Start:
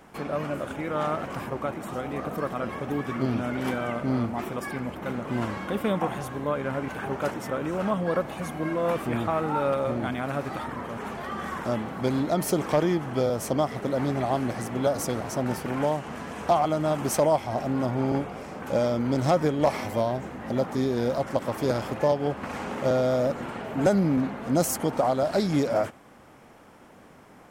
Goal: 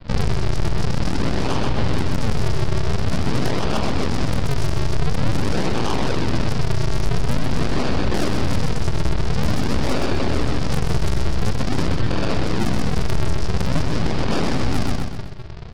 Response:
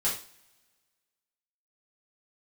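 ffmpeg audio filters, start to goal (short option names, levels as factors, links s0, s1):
-filter_complex "[0:a]bandreject=f=1100:w=16,highpass=f=160:t=q:w=0.5412,highpass=f=160:t=q:w=1.307,lowpass=f=3600:t=q:w=0.5176,lowpass=f=3600:t=q:w=0.7071,lowpass=f=3600:t=q:w=1.932,afreqshift=-350[s0];[1:a]atrim=start_sample=2205,asetrate=30870,aresample=44100[s1];[s0][s1]afir=irnorm=-1:irlink=0,aresample=11025,acrusher=samples=23:mix=1:aa=0.000001:lfo=1:lforange=36.8:lforate=0.27,aresample=44100,acompressor=threshold=0.0631:ratio=3,aeval=exprs='0.282*(cos(1*acos(clip(val(0)/0.282,-1,1)))-cos(1*PI/2))+0.0112*(cos(3*acos(clip(val(0)/0.282,-1,1)))-cos(3*PI/2))+0.0178*(cos(4*acos(clip(val(0)/0.282,-1,1)))-cos(4*PI/2))+0.0891*(cos(8*acos(clip(val(0)/0.282,-1,1)))-cos(8*PI/2))':c=same,atempo=1.9,asplit=2[s2][s3];[s3]aecho=0:1:118|236|354|472|590:0.447|0.197|0.0865|0.0381|0.0167[s4];[s2][s4]amix=inputs=2:normalize=0,asetrate=40572,aresample=44100,alimiter=level_in=5.31:limit=0.891:release=50:level=0:latency=1,volume=0.376"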